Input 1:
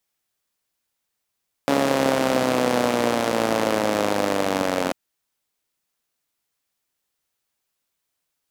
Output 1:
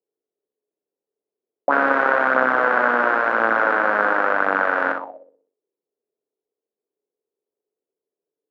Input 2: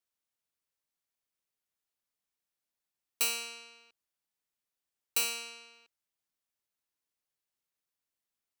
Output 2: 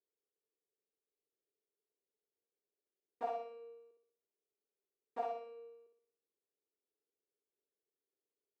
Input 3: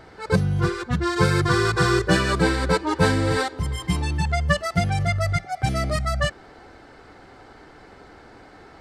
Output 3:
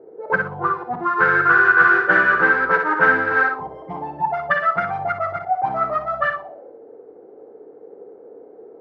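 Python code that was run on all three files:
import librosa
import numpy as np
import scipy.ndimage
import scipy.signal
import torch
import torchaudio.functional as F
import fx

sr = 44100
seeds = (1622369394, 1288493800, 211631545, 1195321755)

p1 = fx.self_delay(x, sr, depth_ms=0.21)
p2 = scipy.signal.sosfilt(scipy.signal.butter(2, 330.0, 'highpass', fs=sr, output='sos'), p1)
p3 = p2 + fx.room_flutter(p2, sr, wall_m=10.6, rt60_s=0.62, dry=0)
p4 = fx.envelope_lowpass(p3, sr, base_hz=420.0, top_hz=1500.0, q=6.4, full_db=-20.5, direction='up')
y = F.gain(torch.from_numpy(p4), -1.5).numpy()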